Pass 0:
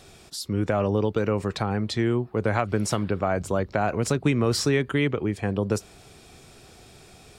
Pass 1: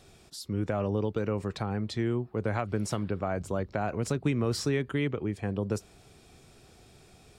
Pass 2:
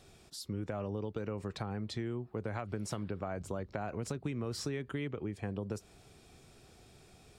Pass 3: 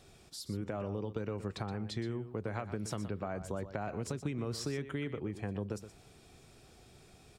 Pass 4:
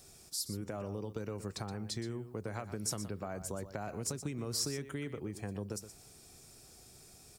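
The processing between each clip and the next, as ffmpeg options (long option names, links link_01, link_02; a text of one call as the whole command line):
ffmpeg -i in.wav -af "lowshelf=frequency=430:gain=3.5,volume=-8dB" out.wav
ffmpeg -i in.wav -af "acompressor=threshold=-31dB:ratio=4,volume=-3dB" out.wav
ffmpeg -i in.wav -af "aecho=1:1:122:0.251" out.wav
ffmpeg -i in.wav -af "aexciter=amount=5:drive=2.6:freq=4700,volume=-2.5dB" out.wav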